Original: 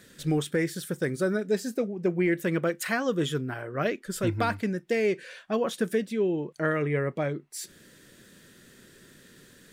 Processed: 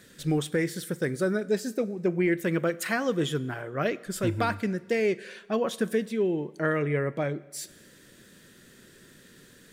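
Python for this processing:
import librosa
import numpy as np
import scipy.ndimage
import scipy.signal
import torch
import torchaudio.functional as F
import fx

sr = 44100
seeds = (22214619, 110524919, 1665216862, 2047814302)

y = fx.rev_schroeder(x, sr, rt60_s=1.2, comb_ms=32, drr_db=19.0)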